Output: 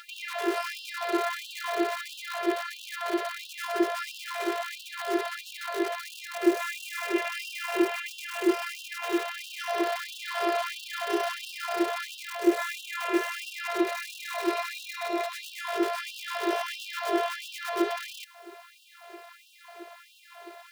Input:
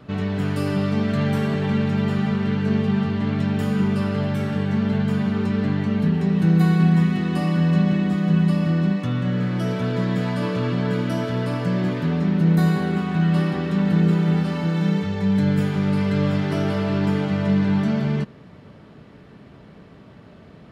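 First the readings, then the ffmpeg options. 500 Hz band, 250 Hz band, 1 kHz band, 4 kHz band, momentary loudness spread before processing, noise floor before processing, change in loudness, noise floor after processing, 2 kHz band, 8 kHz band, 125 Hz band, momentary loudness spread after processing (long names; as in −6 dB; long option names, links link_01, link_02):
−3.0 dB, −13.5 dB, +0.5 dB, +1.0 dB, 5 LU, −46 dBFS, −9.5 dB, −53 dBFS, 0.0 dB, can't be measured, below −40 dB, 9 LU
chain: -filter_complex "[0:a]acrossover=split=3800[link_01][link_02];[link_02]acompressor=threshold=-50dB:ratio=4:attack=1:release=60[link_03];[link_01][link_03]amix=inputs=2:normalize=0,asplit=2[link_04][link_05];[link_05]alimiter=limit=-17.5dB:level=0:latency=1:release=134,volume=0.5dB[link_06];[link_04][link_06]amix=inputs=2:normalize=0,acompressor=mode=upward:threshold=-31dB:ratio=2.5,aeval=exprs='val(0)*sin(2*PI*200*n/s)':channel_layout=same,afftfilt=real='hypot(re,im)*cos(PI*b)':imag='0':win_size=512:overlap=0.75,acrusher=bits=7:dc=4:mix=0:aa=0.000001,afftfilt=real='re*gte(b*sr/1024,340*pow(2600/340,0.5+0.5*sin(2*PI*1.5*pts/sr)))':imag='im*gte(b*sr/1024,340*pow(2600/340,0.5+0.5*sin(2*PI*1.5*pts/sr)))':win_size=1024:overlap=0.75,volume=3.5dB"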